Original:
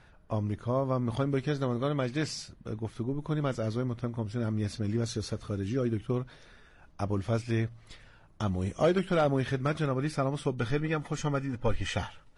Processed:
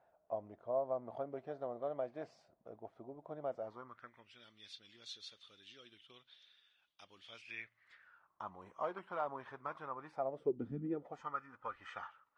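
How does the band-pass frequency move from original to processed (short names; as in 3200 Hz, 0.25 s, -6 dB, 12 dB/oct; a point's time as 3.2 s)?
band-pass, Q 4.9
3.57 s 670 Hz
4.44 s 3400 Hz
7.23 s 3400 Hz
8.42 s 1000 Hz
10.09 s 1000 Hz
10.78 s 200 Hz
11.28 s 1200 Hz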